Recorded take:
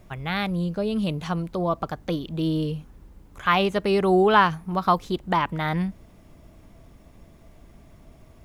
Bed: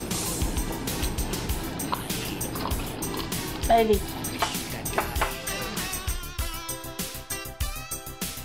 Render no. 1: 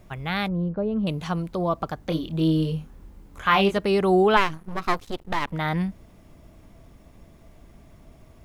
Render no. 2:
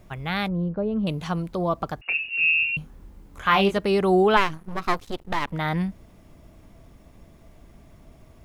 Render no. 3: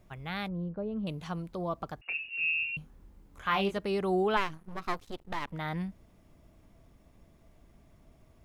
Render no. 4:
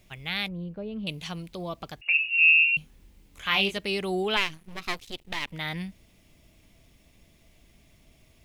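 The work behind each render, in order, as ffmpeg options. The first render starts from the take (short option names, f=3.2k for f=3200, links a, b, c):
-filter_complex "[0:a]asettb=1/sr,asplit=3[a][b][c];[a]atrim=end=0.484[d];[b]atrim=start=0.48:end=1.07,asetpts=PTS-STARTPTS,afade=t=in:d=0.004:c=qsin,afade=t=out:st=0.586:d=0.004:c=qsin,lowpass=1.2k[e];[c]atrim=start=1.066[f];[d][e]acrossfade=d=0.004:c1=hsin:c2=qsin[g];[g][f]acrossfade=d=0.004:c1=qsin:c2=hsin,asettb=1/sr,asplit=3[h][i][j];[h]atrim=end=2.094[k];[i]atrim=start=2.09:end=3.78,asetpts=PTS-STARTPTS,afade=t=in:d=0.004:c=qsin,afade=t=out:st=1.686:d=0.004:c=qsin,asplit=2[l][m];[m]adelay=25,volume=-5dB[n];[l][n]amix=inputs=2:normalize=0,atrim=end_sample=74529[o];[j]atrim=start=3.776[p];[k][o]acrossfade=d=0.004:c1=hsin:c2=qsin[q];[q][p]acrossfade=d=0.004:c1=qsin:c2=hsin,asplit=3[r][s][t];[r]afade=t=out:st=4.36:d=0.02[u];[s]aeval=exprs='max(val(0),0)':c=same,afade=t=in:st=4.36:d=0.02,afade=t=out:st=5.52:d=0.02[v];[t]afade=t=in:st=5.52:d=0.02[w];[u][v][w]amix=inputs=3:normalize=0"
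-filter_complex "[0:a]asettb=1/sr,asplit=3[a][b][c];[a]atrim=end=2.014[d];[b]atrim=start=2.01:end=2.77,asetpts=PTS-STARTPTS,afade=t=in:d=0.004:c=qsin,afade=t=out:st=0.756:d=0.004:c=qsin,lowpass=f=2.5k:t=q:w=0.5098,lowpass=f=2.5k:t=q:w=0.6013,lowpass=f=2.5k:t=q:w=0.9,lowpass=f=2.5k:t=q:w=2.563,afreqshift=-2900[e];[c]atrim=start=2.766[f];[d][e]acrossfade=d=0.004:c1=hsin:c2=qsin[g];[g][f]acrossfade=d=0.004:c1=qsin:c2=hsin"
-af "volume=-9.5dB"
-af "highshelf=f=1.8k:t=q:w=1.5:g=10"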